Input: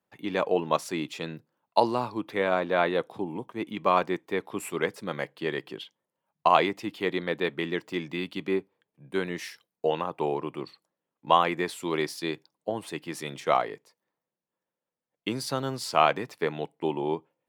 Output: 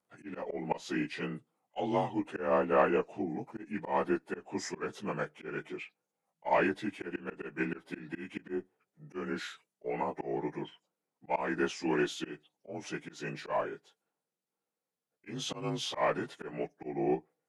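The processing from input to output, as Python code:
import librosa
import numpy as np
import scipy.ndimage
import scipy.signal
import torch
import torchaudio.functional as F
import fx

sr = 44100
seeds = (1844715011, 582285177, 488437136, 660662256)

y = fx.partial_stretch(x, sr, pct=88)
y = fx.cheby_harmonics(y, sr, harmonics=(6,), levels_db=(-34,), full_scale_db=-9.5)
y = fx.auto_swell(y, sr, attack_ms=194.0)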